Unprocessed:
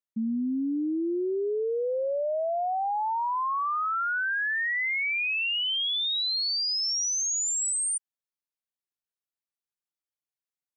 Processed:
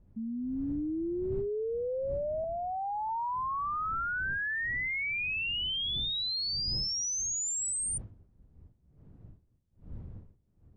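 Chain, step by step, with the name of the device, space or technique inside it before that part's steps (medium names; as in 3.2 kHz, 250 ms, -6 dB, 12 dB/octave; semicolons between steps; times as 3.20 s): 2.44–3.09 s: tilt EQ +3.5 dB/octave; smartphone video outdoors (wind noise 110 Hz -42 dBFS; level rider gain up to 3 dB; trim -8 dB; AAC 48 kbps 22.05 kHz)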